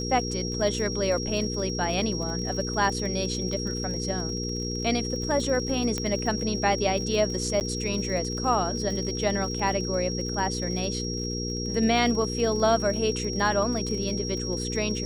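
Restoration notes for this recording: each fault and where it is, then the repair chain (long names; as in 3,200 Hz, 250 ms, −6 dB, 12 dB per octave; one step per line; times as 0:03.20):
surface crackle 54 per second −34 dBFS
mains hum 60 Hz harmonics 8 −32 dBFS
whistle 5,600 Hz −33 dBFS
0:05.98: click −14 dBFS
0:07.60–0:07.61: drop-out 9.2 ms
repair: click removal
notch filter 5,600 Hz, Q 30
hum removal 60 Hz, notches 8
repair the gap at 0:07.60, 9.2 ms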